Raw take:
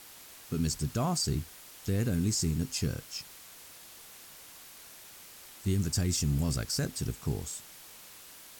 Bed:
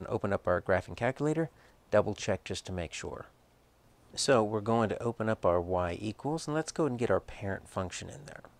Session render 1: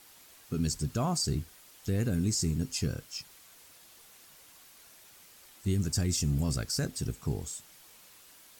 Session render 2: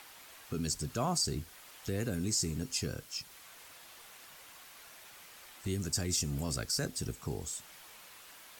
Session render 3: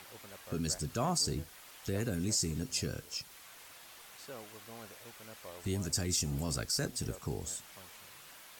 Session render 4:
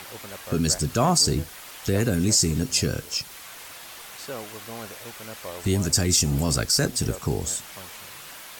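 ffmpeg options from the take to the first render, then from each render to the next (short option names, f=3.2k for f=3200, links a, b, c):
-af "afftdn=nr=6:nf=-51"
-filter_complex "[0:a]acrossover=split=320|530|3300[a][b][c][d];[a]alimiter=level_in=6.5dB:limit=-24dB:level=0:latency=1:release=283,volume=-6.5dB[e];[c]acompressor=mode=upward:threshold=-49dB:ratio=2.5[f];[e][b][f][d]amix=inputs=4:normalize=0"
-filter_complex "[1:a]volume=-22.5dB[a];[0:a][a]amix=inputs=2:normalize=0"
-af "volume=12dB"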